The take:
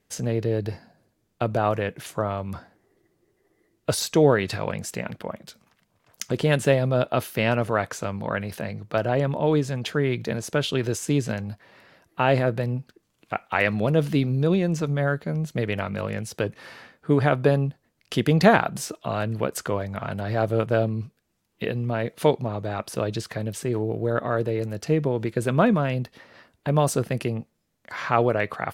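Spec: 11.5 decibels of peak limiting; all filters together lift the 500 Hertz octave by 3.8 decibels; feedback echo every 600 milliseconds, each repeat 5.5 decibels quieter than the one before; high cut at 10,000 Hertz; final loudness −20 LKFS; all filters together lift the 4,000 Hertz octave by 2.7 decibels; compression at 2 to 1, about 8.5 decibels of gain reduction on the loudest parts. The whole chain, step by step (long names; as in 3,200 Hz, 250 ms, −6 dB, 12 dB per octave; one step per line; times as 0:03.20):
low-pass filter 10,000 Hz
parametric band 500 Hz +4.5 dB
parametric band 4,000 Hz +3.5 dB
downward compressor 2 to 1, threshold −25 dBFS
brickwall limiter −20 dBFS
repeating echo 600 ms, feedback 53%, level −5.5 dB
level +11 dB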